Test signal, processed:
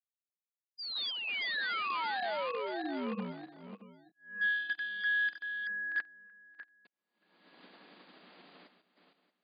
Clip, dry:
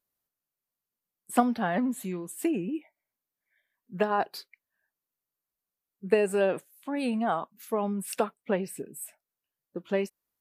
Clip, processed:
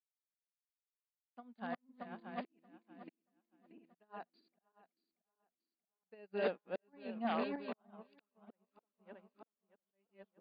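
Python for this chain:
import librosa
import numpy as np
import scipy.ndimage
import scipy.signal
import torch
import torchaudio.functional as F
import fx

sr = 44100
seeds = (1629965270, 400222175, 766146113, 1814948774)

y = fx.reverse_delay_fb(x, sr, ms=315, feedback_pct=68, wet_db=-4)
y = fx.dynamic_eq(y, sr, hz=360.0, q=2.2, threshold_db=-41.0, ratio=4.0, max_db=-4)
y = fx.auto_swell(y, sr, attack_ms=768.0)
y = 10.0 ** (-23.5 / 20.0) * (np.abs((y / 10.0 ** (-23.5 / 20.0) + 3.0) % 4.0 - 2.0) - 1.0)
y = fx.brickwall_bandpass(y, sr, low_hz=170.0, high_hz=4900.0)
y = fx.upward_expand(y, sr, threshold_db=-51.0, expansion=2.5)
y = y * librosa.db_to_amplitude(-2.0)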